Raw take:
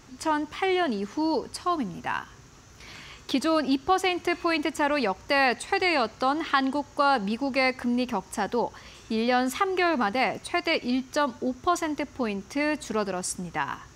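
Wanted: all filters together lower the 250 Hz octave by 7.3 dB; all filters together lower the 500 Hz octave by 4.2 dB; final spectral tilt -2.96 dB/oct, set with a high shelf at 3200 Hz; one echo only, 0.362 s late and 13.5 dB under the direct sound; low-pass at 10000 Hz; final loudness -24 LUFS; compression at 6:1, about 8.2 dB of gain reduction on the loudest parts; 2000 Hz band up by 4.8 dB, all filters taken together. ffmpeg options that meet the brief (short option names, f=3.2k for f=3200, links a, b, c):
-af "lowpass=10k,equalizer=f=250:t=o:g=-8,equalizer=f=500:t=o:g=-3.5,equalizer=f=2k:t=o:g=7,highshelf=f=3.2k:g=-3.5,acompressor=threshold=-25dB:ratio=6,aecho=1:1:362:0.211,volume=6.5dB"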